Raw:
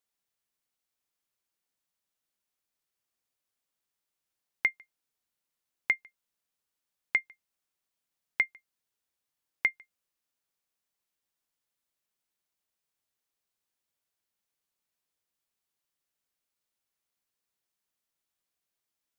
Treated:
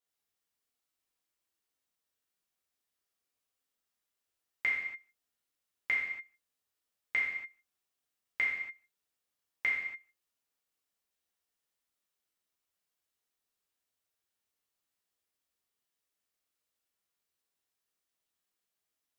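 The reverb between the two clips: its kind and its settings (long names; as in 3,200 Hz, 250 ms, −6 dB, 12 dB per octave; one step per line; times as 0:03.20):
reverb whose tail is shaped and stops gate 310 ms falling, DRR −6.5 dB
level −7.5 dB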